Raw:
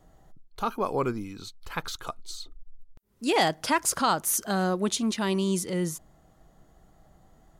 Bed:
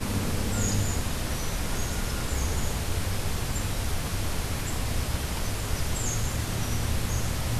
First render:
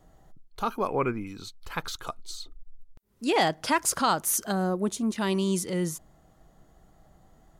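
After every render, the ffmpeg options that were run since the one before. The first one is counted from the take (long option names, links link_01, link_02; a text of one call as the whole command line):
ffmpeg -i in.wav -filter_complex "[0:a]asettb=1/sr,asplit=3[link_01][link_02][link_03];[link_01]atrim=end=0.874[link_04];[link_02]atrim=start=0.87:end=1.27,asetpts=PTS-STARTPTS,afade=type=in:duration=0.004:curve=qsin,afade=type=out:start_time=0.396:duration=0.004:curve=qsin,highshelf=frequency=3200:width_type=q:width=3:gain=-10.5[link_05];[link_03]atrim=start=1.266[link_06];[link_04][link_05]acrossfade=duration=0.004:curve1=hsin:curve2=qsin[link_07];[link_07][link_06]acrossfade=duration=0.004:curve1=qsin:curve2=hsin,asettb=1/sr,asplit=3[link_08][link_09][link_10];[link_08]atrim=end=3.244[link_11];[link_09]atrim=start=3.24:end=3.66,asetpts=PTS-STARTPTS,afade=type=in:duration=0.004:curve=qsin,afade=type=out:start_time=0.416:duration=0.004:curve=qsin,highshelf=frequency=5900:gain=-6[link_12];[link_10]atrim=start=3.656[link_13];[link_11][link_12]acrossfade=duration=0.004:curve1=hsin:curve2=qsin[link_14];[link_14][link_13]acrossfade=duration=0.004:curve1=qsin:curve2=hsin,asettb=1/sr,asplit=3[link_15][link_16][link_17];[link_15]atrim=end=4.524[link_18];[link_16]atrim=start=4.52:end=5.16,asetpts=PTS-STARTPTS,afade=type=in:duration=0.004:curve=qsin,afade=type=out:start_time=0.636:duration=0.004:curve=qsin,equalizer=frequency=3300:width=0.56:gain=-11.5[link_19];[link_17]atrim=start=5.156[link_20];[link_18][link_19]acrossfade=duration=0.004:curve1=hsin:curve2=qsin[link_21];[link_21][link_20]acrossfade=duration=0.004:curve1=qsin:curve2=hsin" out.wav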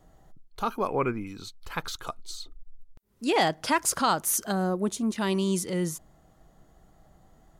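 ffmpeg -i in.wav -af anull out.wav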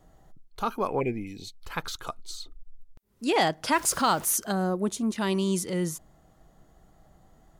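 ffmpeg -i in.wav -filter_complex "[0:a]asplit=3[link_01][link_02][link_03];[link_01]afade=type=out:start_time=0.99:duration=0.02[link_04];[link_02]asuperstop=centerf=1200:order=12:qfactor=1.3,afade=type=in:start_time=0.99:duration=0.02,afade=type=out:start_time=1.57:duration=0.02[link_05];[link_03]afade=type=in:start_time=1.57:duration=0.02[link_06];[link_04][link_05][link_06]amix=inputs=3:normalize=0,asettb=1/sr,asplit=3[link_07][link_08][link_09];[link_07]atrim=end=3.724[link_10];[link_08]atrim=start=3.72:end=4.33,asetpts=PTS-STARTPTS,afade=type=in:duration=0.004:curve=qsin,afade=type=out:start_time=0.606:duration=0.004:curve=qsin,aeval=exprs='val(0)+0.5*0.0126*sgn(val(0))':channel_layout=same[link_11];[link_09]atrim=start=4.326[link_12];[link_10][link_11]acrossfade=duration=0.004:curve1=hsin:curve2=qsin[link_13];[link_13][link_12]acrossfade=duration=0.004:curve1=qsin:curve2=hsin" out.wav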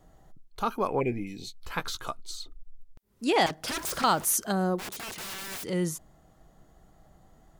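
ffmpeg -i in.wav -filter_complex "[0:a]asettb=1/sr,asplit=3[link_01][link_02][link_03];[link_01]atrim=end=1.104[link_04];[link_02]atrim=start=1.1:end=2.16,asetpts=PTS-STARTPTS,afade=type=in:duration=0.004:curve=qsin,afade=type=out:start_time=1.056:duration=0.004:curve=qsin,asplit=2[link_05][link_06];[link_06]adelay=16,volume=-7dB[link_07];[link_05][link_07]amix=inputs=2:normalize=0,atrim=end_sample=46746[link_08];[link_03]atrim=start=2.156[link_09];[link_04][link_08]acrossfade=duration=0.004:curve1=hsin:curve2=qsin[link_10];[link_10][link_09]acrossfade=duration=0.004:curve1=qsin:curve2=hsin,asettb=1/sr,asplit=3[link_11][link_12][link_13];[link_11]atrim=end=3.464[link_14];[link_12]atrim=start=3.46:end=4.04,asetpts=PTS-STARTPTS,afade=type=in:duration=0.004:curve=qsin,afade=type=out:start_time=0.576:duration=0.004:curve=qsin,aeval=exprs='0.0447*(abs(mod(val(0)/0.0447+3,4)-2)-1)':channel_layout=same[link_15];[link_13]atrim=start=4.036[link_16];[link_14][link_15]acrossfade=duration=0.004:curve1=hsin:curve2=qsin[link_17];[link_17][link_16]acrossfade=duration=0.004:curve1=qsin:curve2=hsin,asplit=3[link_18][link_19][link_20];[link_18]afade=type=out:start_time=4.78:duration=0.02[link_21];[link_19]aeval=exprs='(mod(44.7*val(0)+1,2)-1)/44.7':channel_layout=same,afade=type=in:start_time=4.78:duration=0.02,afade=type=out:start_time=5.63:duration=0.02[link_22];[link_20]afade=type=in:start_time=5.63:duration=0.02[link_23];[link_21][link_22][link_23]amix=inputs=3:normalize=0" out.wav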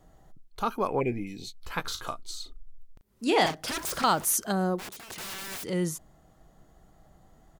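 ffmpeg -i in.wav -filter_complex "[0:a]asplit=3[link_01][link_02][link_03];[link_01]afade=type=out:start_time=1.84:duration=0.02[link_04];[link_02]asplit=2[link_05][link_06];[link_06]adelay=37,volume=-8dB[link_07];[link_05][link_07]amix=inputs=2:normalize=0,afade=type=in:start_time=1.84:duration=0.02,afade=type=out:start_time=3.61:duration=0.02[link_08];[link_03]afade=type=in:start_time=3.61:duration=0.02[link_09];[link_04][link_08][link_09]amix=inputs=3:normalize=0,asplit=2[link_10][link_11];[link_10]atrim=end=5.1,asetpts=PTS-STARTPTS,afade=type=out:start_time=4.59:duration=0.51:curve=qsin:silence=0.251189[link_12];[link_11]atrim=start=5.1,asetpts=PTS-STARTPTS,afade=type=in:duration=0.004:curve=hsin:silence=0.251189[link_13];[link_12][link_13]concat=n=2:v=0:a=1" out.wav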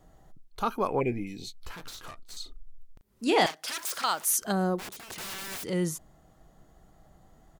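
ffmpeg -i in.wav -filter_complex "[0:a]asettb=1/sr,asplit=3[link_01][link_02][link_03];[link_01]atrim=end=1.714[link_04];[link_02]atrim=start=1.71:end=2.37,asetpts=PTS-STARTPTS,afade=type=in:duration=0.004:curve=qsin,afade=type=out:start_time=0.656:duration=0.004:curve=qsin,aeval=exprs='(tanh(100*val(0)+0.5)-tanh(0.5))/100':channel_layout=same[link_05];[link_03]atrim=start=2.366[link_06];[link_04][link_05]acrossfade=duration=0.004:curve1=hsin:curve2=qsin[link_07];[link_07][link_06]acrossfade=duration=0.004:curve1=qsin:curve2=hsin,asettb=1/sr,asplit=3[link_08][link_09][link_10];[link_08]atrim=end=3.464[link_11];[link_09]atrim=start=3.46:end=4.42,asetpts=PTS-STARTPTS,afade=type=in:duration=0.004:curve=qsin,afade=type=out:start_time=0.956:duration=0.004:curve=qsin,highpass=frequency=1400:poles=1[link_12];[link_10]atrim=start=4.416[link_13];[link_11][link_12]acrossfade=duration=0.004:curve1=hsin:curve2=qsin[link_14];[link_14][link_13]acrossfade=duration=0.004:curve1=qsin:curve2=hsin" out.wav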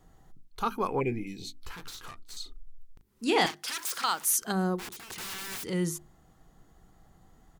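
ffmpeg -i in.wav -af "equalizer=frequency=610:width=3.7:gain=-9,bandreject=frequency=50:width_type=h:width=6,bandreject=frequency=100:width_type=h:width=6,bandreject=frequency=150:width_type=h:width=6,bandreject=frequency=200:width_type=h:width=6,bandreject=frequency=250:width_type=h:width=6,bandreject=frequency=300:width_type=h:width=6,bandreject=frequency=350:width_type=h:width=6" out.wav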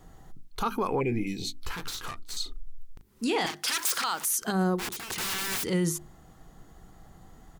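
ffmpeg -i in.wav -af "acontrast=83,alimiter=limit=-19dB:level=0:latency=1:release=99" out.wav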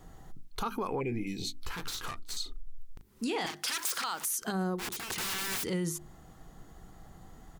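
ffmpeg -i in.wav -af "acompressor=threshold=-34dB:ratio=2" out.wav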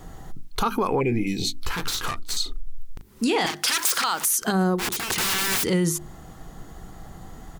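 ffmpeg -i in.wav -af "volume=10.5dB" out.wav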